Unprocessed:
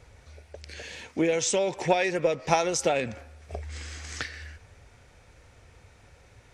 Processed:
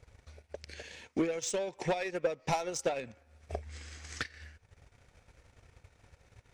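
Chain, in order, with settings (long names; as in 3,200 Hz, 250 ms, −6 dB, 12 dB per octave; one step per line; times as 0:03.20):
soft clipping −21 dBFS, distortion −11 dB
transient designer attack +9 dB, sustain −11 dB
level −7.5 dB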